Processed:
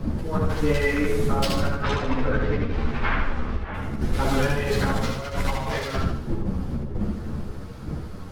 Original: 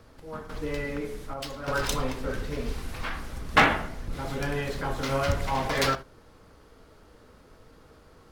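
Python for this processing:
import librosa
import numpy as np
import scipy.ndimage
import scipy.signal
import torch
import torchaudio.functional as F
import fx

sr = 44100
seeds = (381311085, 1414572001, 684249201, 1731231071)

y = fx.dmg_wind(x, sr, seeds[0], corner_hz=160.0, level_db=-33.0)
y = fx.lowpass(y, sr, hz=2400.0, slope=12, at=(1.67, 3.74))
y = fx.over_compress(y, sr, threshold_db=-30.0, ratio=-0.5)
y = fx.echo_feedback(y, sr, ms=75, feedback_pct=45, wet_db=-3.5)
y = fx.ensemble(y, sr)
y = y * librosa.db_to_amplitude(8.5)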